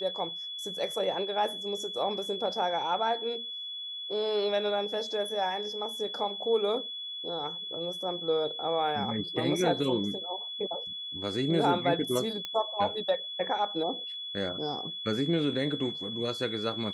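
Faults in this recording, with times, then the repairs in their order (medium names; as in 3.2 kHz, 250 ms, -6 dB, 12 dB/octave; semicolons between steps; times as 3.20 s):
whine 3.4 kHz -36 dBFS
12.45 s: pop -20 dBFS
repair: de-click; band-stop 3.4 kHz, Q 30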